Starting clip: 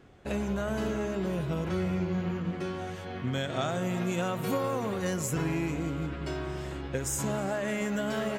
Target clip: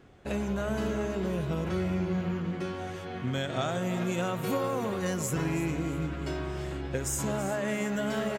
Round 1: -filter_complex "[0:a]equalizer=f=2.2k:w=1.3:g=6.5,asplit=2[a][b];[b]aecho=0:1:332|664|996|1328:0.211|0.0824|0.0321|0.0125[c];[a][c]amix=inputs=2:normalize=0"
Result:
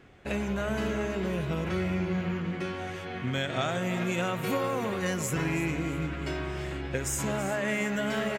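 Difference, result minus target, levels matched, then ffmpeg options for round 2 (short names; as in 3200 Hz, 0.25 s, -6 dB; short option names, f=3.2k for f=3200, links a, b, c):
2000 Hz band +4.0 dB
-filter_complex "[0:a]asplit=2[a][b];[b]aecho=0:1:332|664|996|1328:0.211|0.0824|0.0321|0.0125[c];[a][c]amix=inputs=2:normalize=0"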